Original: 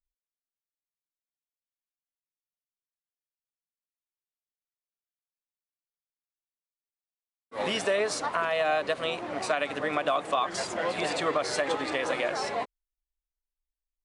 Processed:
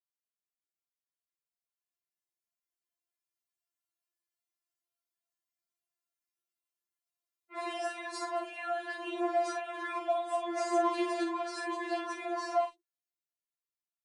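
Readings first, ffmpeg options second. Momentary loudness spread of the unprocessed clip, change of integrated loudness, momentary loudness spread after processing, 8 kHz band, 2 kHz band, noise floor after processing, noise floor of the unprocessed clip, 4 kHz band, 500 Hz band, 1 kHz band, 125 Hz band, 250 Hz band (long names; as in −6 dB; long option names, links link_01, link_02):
6 LU, −5.5 dB, 7 LU, −9.5 dB, −9.0 dB, below −85 dBFS, below −85 dBFS, −11.5 dB, −5.5 dB, −3.0 dB, below −35 dB, 0.0 dB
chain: -filter_complex "[0:a]highpass=180,acrossover=split=1100|2500[link_01][link_02][link_03];[link_01]acompressor=threshold=-27dB:ratio=4[link_04];[link_02]acompressor=threshold=-44dB:ratio=4[link_05];[link_03]acompressor=threshold=-47dB:ratio=4[link_06];[link_04][link_05][link_06]amix=inputs=3:normalize=0,alimiter=limit=-23.5dB:level=0:latency=1:release=320,acrossover=split=250|3100[link_07][link_08][link_09];[link_09]adelay=40[link_10];[link_07]adelay=90[link_11];[link_11][link_08][link_10]amix=inputs=3:normalize=0,dynaudnorm=framelen=500:gausssize=9:maxgain=9dB,asplit=2[link_12][link_13];[link_13]adelay=48,volume=-7.5dB[link_14];[link_12][link_14]amix=inputs=2:normalize=0,afftfilt=real='re*4*eq(mod(b,16),0)':imag='im*4*eq(mod(b,16),0)':win_size=2048:overlap=0.75,volume=-5dB"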